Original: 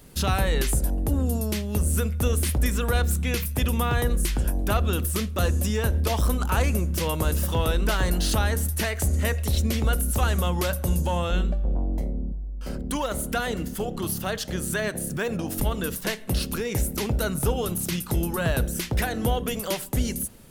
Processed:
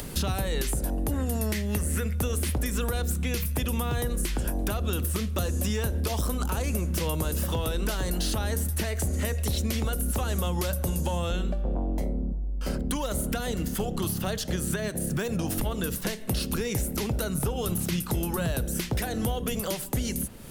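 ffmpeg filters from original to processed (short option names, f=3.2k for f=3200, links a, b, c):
-filter_complex "[0:a]asettb=1/sr,asplit=3[a][b][c];[a]atrim=end=1.114[d];[b]atrim=start=1.11:end=2.13,asetpts=PTS-STARTPTS,afade=t=in:d=0.004:c=qsin,afade=t=out:st=1.016:d=0.004:c=qsin,equalizer=f=1.9k:w=2.3:g=13.5[e];[c]atrim=start=2.126[f];[d][e]acrossfade=d=0.004:c1=hsin:c2=qsin[g];[g][f]acrossfade=d=0.004:c1=qsin:c2=hsin,acompressor=mode=upward:threshold=-35dB:ratio=2.5,alimiter=limit=-17.5dB:level=0:latency=1:release=263,acrossover=split=170|660|3900[h][i][j][k];[h]acompressor=threshold=-33dB:ratio=4[l];[i]acompressor=threshold=-37dB:ratio=4[m];[j]acompressor=threshold=-43dB:ratio=4[n];[k]acompressor=threshold=-38dB:ratio=4[o];[l][m][n][o]amix=inputs=4:normalize=0,volume=5dB"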